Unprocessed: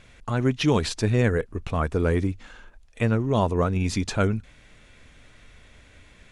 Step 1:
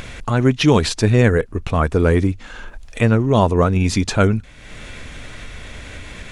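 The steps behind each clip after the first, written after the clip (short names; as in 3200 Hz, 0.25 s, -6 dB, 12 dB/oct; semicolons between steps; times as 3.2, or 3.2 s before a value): upward compressor, threshold -30 dBFS; gain +7.5 dB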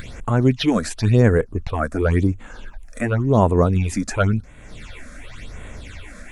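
phaser stages 8, 0.93 Hz, lowest notch 110–5000 Hz; gain -1.5 dB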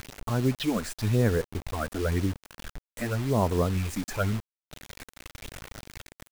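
bit-crush 5-bit; gain -9 dB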